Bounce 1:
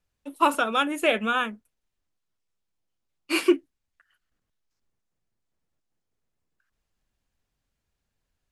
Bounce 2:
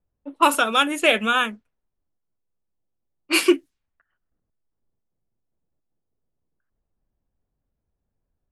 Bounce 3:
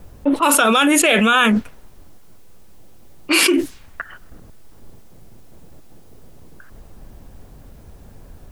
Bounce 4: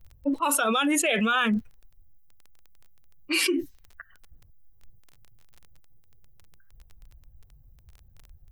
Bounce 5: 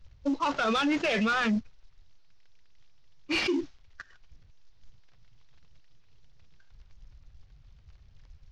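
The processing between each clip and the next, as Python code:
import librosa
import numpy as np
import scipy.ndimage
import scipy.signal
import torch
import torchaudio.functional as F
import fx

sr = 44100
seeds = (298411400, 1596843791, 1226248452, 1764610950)

y1 = fx.env_lowpass(x, sr, base_hz=690.0, full_db=-22.0)
y1 = fx.high_shelf(y1, sr, hz=2500.0, db=8.5)
y1 = F.gain(torch.from_numpy(y1), 2.5).numpy()
y2 = fx.env_flatten(y1, sr, amount_pct=100)
y2 = F.gain(torch.from_numpy(y2), -3.0).numpy()
y3 = fx.bin_expand(y2, sr, power=1.5)
y3 = fx.dmg_crackle(y3, sr, seeds[0], per_s=16.0, level_db=-30.0)
y3 = F.gain(torch.from_numpy(y3), -7.5).numpy()
y4 = fx.cvsd(y3, sr, bps=32000)
y4 = 10.0 ** (-20.0 / 20.0) * np.tanh(y4 / 10.0 ** (-20.0 / 20.0))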